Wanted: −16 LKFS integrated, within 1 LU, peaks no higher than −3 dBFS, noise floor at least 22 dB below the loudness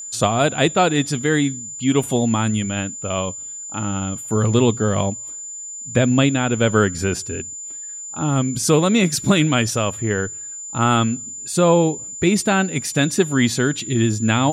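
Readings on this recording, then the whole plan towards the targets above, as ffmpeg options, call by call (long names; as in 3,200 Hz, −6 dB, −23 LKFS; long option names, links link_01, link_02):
interfering tone 7,100 Hz; level of the tone −30 dBFS; integrated loudness −19.5 LKFS; sample peak −2.0 dBFS; target loudness −16.0 LKFS
→ -af "bandreject=frequency=7100:width=30"
-af "volume=3.5dB,alimiter=limit=-3dB:level=0:latency=1"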